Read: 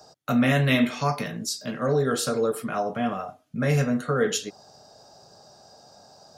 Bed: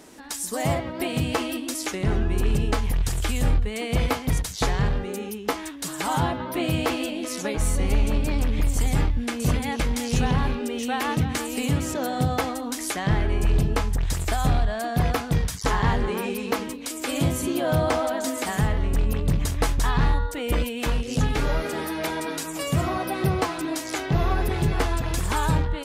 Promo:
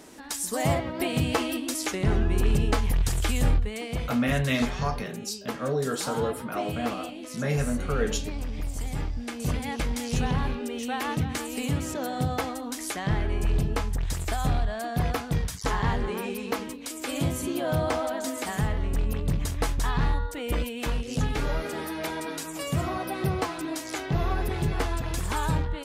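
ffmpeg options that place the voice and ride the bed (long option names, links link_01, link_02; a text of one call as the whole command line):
ffmpeg -i stem1.wav -i stem2.wav -filter_complex "[0:a]adelay=3800,volume=-4.5dB[link_01];[1:a]volume=5dB,afade=type=out:start_time=3.42:duration=0.63:silence=0.354813,afade=type=in:start_time=8.93:duration=0.85:silence=0.530884[link_02];[link_01][link_02]amix=inputs=2:normalize=0" out.wav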